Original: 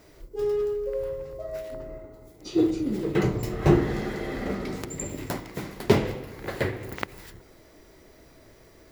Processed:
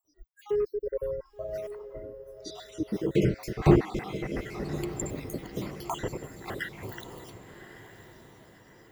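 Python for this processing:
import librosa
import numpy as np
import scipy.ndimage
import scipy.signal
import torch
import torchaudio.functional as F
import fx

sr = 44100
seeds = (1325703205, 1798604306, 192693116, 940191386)

y = fx.spec_dropout(x, sr, seeds[0], share_pct=55)
y = fx.noise_reduce_blind(y, sr, reduce_db=30)
y = fx.echo_diffused(y, sr, ms=1120, feedback_pct=42, wet_db=-12)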